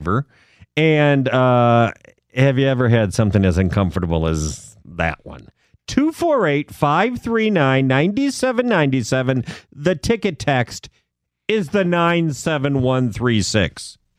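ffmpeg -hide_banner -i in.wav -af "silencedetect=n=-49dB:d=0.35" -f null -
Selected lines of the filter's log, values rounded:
silence_start: 10.97
silence_end: 11.49 | silence_duration: 0.52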